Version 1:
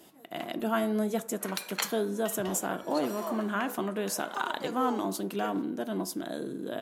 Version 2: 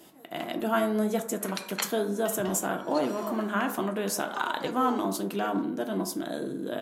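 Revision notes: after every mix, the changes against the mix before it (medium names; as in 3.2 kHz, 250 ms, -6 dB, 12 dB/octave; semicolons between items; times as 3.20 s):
speech: send +9.0 dB; background: add low-pass 8.1 kHz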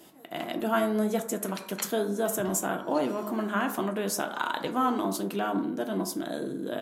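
background -6.5 dB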